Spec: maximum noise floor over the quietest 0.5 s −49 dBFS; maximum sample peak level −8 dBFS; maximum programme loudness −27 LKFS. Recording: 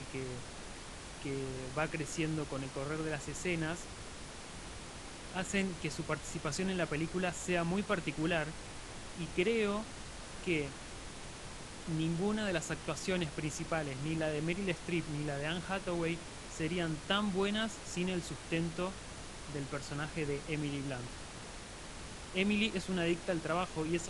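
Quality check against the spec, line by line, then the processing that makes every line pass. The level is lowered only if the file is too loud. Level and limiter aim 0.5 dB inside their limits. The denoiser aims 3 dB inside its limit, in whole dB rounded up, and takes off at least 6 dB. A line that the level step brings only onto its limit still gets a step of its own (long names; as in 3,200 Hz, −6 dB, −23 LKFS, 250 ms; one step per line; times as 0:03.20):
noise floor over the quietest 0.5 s −47 dBFS: out of spec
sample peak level −16.5 dBFS: in spec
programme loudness −37.5 LKFS: in spec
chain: broadband denoise 6 dB, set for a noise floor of −47 dBFS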